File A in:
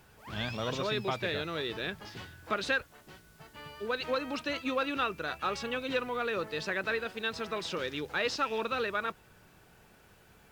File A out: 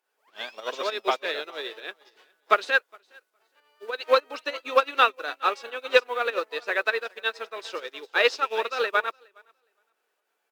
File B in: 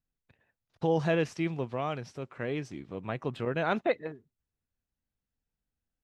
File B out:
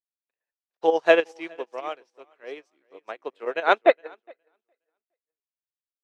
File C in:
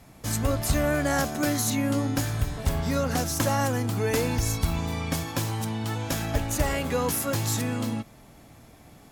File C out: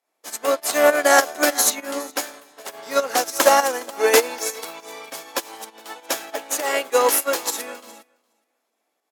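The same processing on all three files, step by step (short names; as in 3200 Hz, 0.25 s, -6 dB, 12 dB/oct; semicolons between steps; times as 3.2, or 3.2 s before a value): HPF 390 Hz 24 dB/oct; in parallel at +2.5 dB: pump 100 bpm, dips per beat 2, -20 dB, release 0.115 s; on the sum: feedback echo 0.414 s, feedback 26%, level -12 dB; upward expander 2.5:1, over -40 dBFS; gain +7.5 dB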